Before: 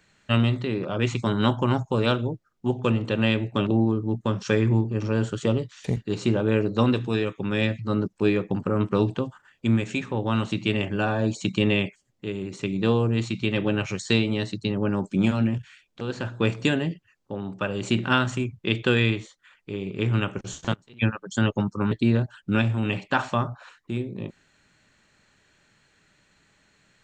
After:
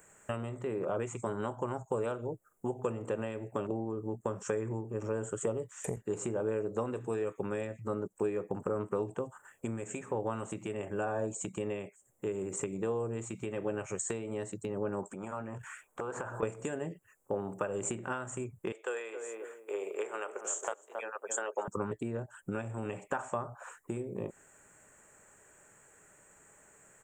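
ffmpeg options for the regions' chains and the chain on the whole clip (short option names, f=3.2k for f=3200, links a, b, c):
-filter_complex "[0:a]asettb=1/sr,asplit=3[a][b][c];[a]atrim=end=15.034[d];[b]atrim=start=15.03:end=16.43,asetpts=PTS-STARTPTS,afade=t=in:d=0.004:c=qsin,afade=t=out:st=1.396:d=0.004:c=qsin,equalizer=f=1.1k:t=o:w=1.5:g=12,acompressor=threshold=-34dB:ratio=20:attack=3.2:release=140:knee=1:detection=peak[e];[c]atrim=start=16.426[f];[d][e]acrossfade=d=0.004:c1=hsin:c2=qsin[g];[g][f]acrossfade=d=0.004:c1=qsin:c2=hsin,asettb=1/sr,asplit=3[h][i][j];[h]atrim=end=18.724[k];[i]atrim=start=18.72:end=21.68,asetpts=PTS-STARTPTS,afade=t=in:d=0.004:c=qsin,afade=t=out:st=2.956:d=0.004:c=qsin,highpass=f=460:w=0.5412,highpass=f=460:w=1.3066,asplit=2[l][m];[m]adelay=271,lowpass=f=870:p=1,volume=-10dB,asplit=2[n][o];[o]adelay=271,lowpass=f=870:p=1,volume=0.24,asplit=2[p][q];[q]adelay=271,lowpass=f=870:p=1,volume=0.24[r];[l][n][p][r]amix=inputs=4:normalize=0,atrim=end_sample=130536[s];[j]atrim=start=21.676[t];[k][s]acrossfade=d=0.004:c1=hsin:c2=qsin[u];[u][t]acrossfade=d=0.004:c1=qsin:c2=hsin,tiltshelf=f=1.3k:g=-4,acompressor=threshold=-36dB:ratio=6,firequalizer=gain_entry='entry(260,0);entry(430,10);entry(4200,-24);entry(7500,11)':delay=0.05:min_phase=1"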